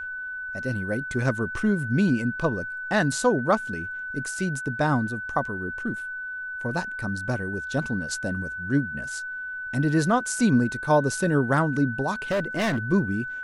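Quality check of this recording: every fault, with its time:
whistle 1,500 Hz −31 dBFS
0:12.31–0:12.78: clipping −21 dBFS

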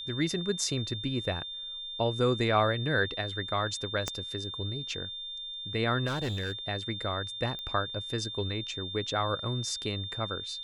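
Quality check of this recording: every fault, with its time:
whistle 3,600 Hz −37 dBFS
0:04.08: click −15 dBFS
0:06.06–0:06.53: clipping −28.5 dBFS
0:07.59: click −25 dBFS

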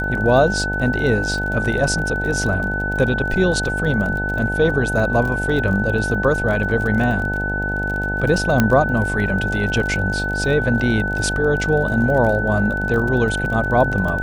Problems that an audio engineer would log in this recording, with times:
mains buzz 50 Hz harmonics 18 −25 dBFS
surface crackle 28 per second −25 dBFS
whistle 1,500 Hz −22 dBFS
0:08.60: click −2 dBFS

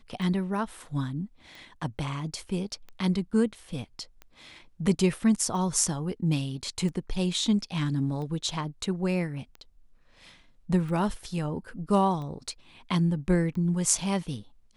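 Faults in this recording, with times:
scratch tick 45 rpm

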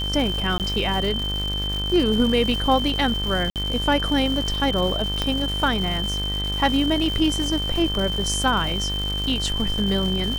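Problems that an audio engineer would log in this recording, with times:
mains buzz 50 Hz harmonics 38 −28 dBFS
surface crackle 400 per second −28 dBFS
whistle 3,100 Hz −26 dBFS
0:00.58–0:00.60: drop-out 18 ms
0:03.50–0:03.56: drop-out 58 ms
0:05.22: click −9 dBFS

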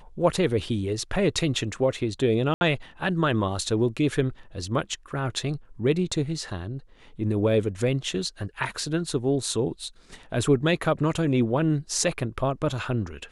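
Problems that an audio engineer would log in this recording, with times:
0:02.54–0:02.61: drop-out 71 ms

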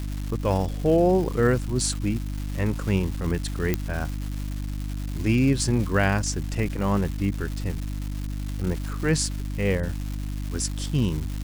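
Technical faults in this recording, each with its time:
surface crackle 470 per second −31 dBFS
mains hum 50 Hz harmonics 6 −30 dBFS
0:03.74: click −9 dBFS

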